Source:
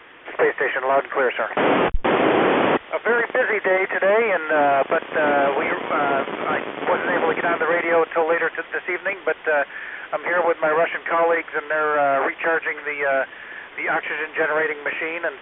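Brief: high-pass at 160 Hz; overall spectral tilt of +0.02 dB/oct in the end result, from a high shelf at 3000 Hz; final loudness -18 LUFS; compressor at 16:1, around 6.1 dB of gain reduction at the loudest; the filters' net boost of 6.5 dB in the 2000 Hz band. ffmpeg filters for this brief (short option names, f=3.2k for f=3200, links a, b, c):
-af "highpass=160,equalizer=f=2k:t=o:g=6,highshelf=f=3k:g=6.5,acompressor=threshold=-18dB:ratio=16,volume=4dB"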